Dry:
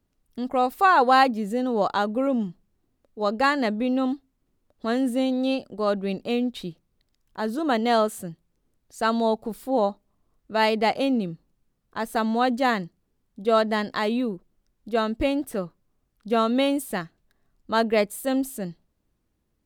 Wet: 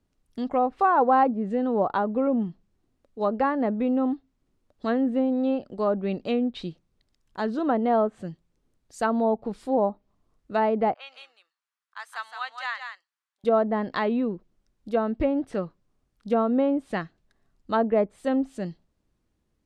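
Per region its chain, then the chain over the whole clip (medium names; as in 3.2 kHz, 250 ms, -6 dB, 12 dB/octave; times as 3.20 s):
10.94–13.44 s: high-pass 1.2 kHz 24 dB/octave + treble shelf 2 kHz -8.5 dB + delay 168 ms -6.5 dB
whole clip: low-pass that closes with the level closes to 980 Hz, closed at -18.5 dBFS; low-pass 9.6 kHz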